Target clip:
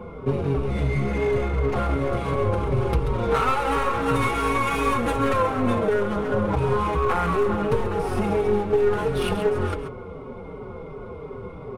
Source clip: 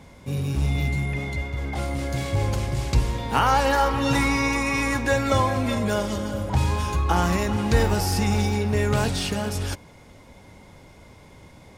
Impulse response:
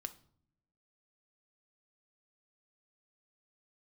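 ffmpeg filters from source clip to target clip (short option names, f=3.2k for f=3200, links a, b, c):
-filter_complex "[0:a]asplit=2[a][b];[1:a]atrim=start_sample=2205,lowpass=3.6k[c];[b][c]afir=irnorm=-1:irlink=0,volume=1dB[d];[a][d]amix=inputs=2:normalize=0,adynamicsmooth=sensitivity=2:basefreq=1.8k,superequalizer=7b=3.55:10b=2.51:11b=0.398:16b=3.55,acompressor=threshold=-22dB:ratio=8,aeval=exprs='clip(val(0),-1,0.0398)':c=same,adynamicequalizer=threshold=0.00158:dfrequency=4900:dqfactor=2.6:tfrequency=4900:tqfactor=2.6:attack=5:release=100:ratio=0.375:range=3:mode=cutabove:tftype=bell,bandreject=f=50:t=h:w=6,bandreject=f=100:t=h:w=6,aecho=1:1:135:0.335,asplit=2[e][f];[f]adelay=4.9,afreqshift=-2.8[g];[e][g]amix=inputs=2:normalize=1,volume=7.5dB"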